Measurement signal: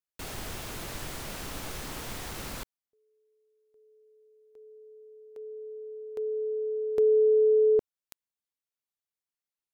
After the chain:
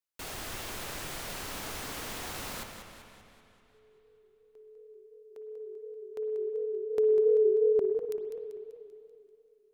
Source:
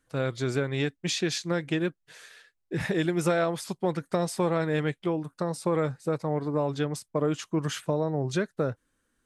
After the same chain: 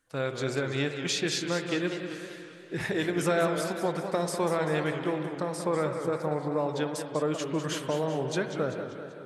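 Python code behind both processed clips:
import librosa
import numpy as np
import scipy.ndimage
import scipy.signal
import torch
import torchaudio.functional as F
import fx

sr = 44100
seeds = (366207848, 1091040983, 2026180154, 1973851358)

p1 = fx.low_shelf(x, sr, hz=290.0, db=-7.0)
p2 = p1 + fx.echo_filtered(p1, sr, ms=128, feedback_pct=82, hz=1200.0, wet_db=-23, dry=0)
p3 = fx.rev_spring(p2, sr, rt60_s=2.9, pass_ms=(51, 59), chirp_ms=55, drr_db=7.5)
y = fx.echo_warbled(p3, sr, ms=194, feedback_pct=52, rate_hz=2.8, cents=189, wet_db=-9)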